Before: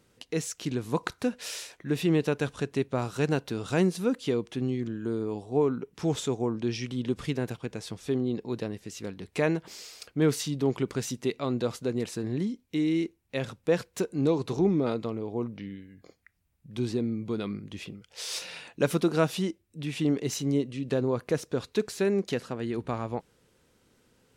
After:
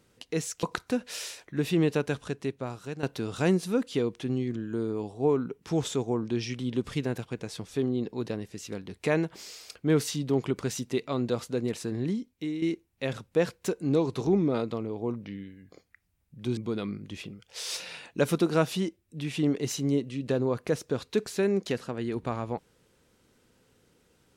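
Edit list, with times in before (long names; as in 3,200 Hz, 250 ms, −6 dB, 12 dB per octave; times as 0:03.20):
0:00.63–0:00.95: remove
0:02.31–0:03.35: fade out, to −13 dB
0:12.49–0:12.94: fade out, to −9.5 dB
0:16.89–0:17.19: remove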